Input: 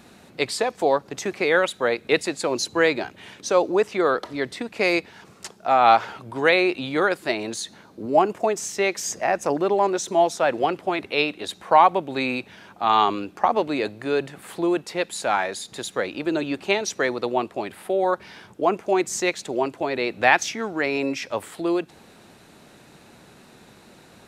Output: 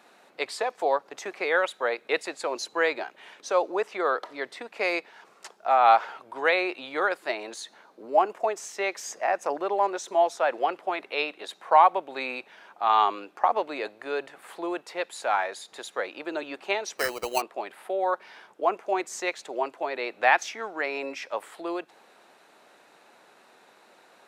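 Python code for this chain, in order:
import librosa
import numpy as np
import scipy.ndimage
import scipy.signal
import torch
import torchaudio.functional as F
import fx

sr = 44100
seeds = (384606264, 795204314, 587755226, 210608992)

y = scipy.signal.sosfilt(scipy.signal.butter(2, 620.0, 'highpass', fs=sr, output='sos'), x)
y = fx.high_shelf(y, sr, hz=2400.0, db=-10.0)
y = fx.sample_hold(y, sr, seeds[0], rate_hz=3500.0, jitter_pct=0, at=(16.97, 17.4), fade=0.02)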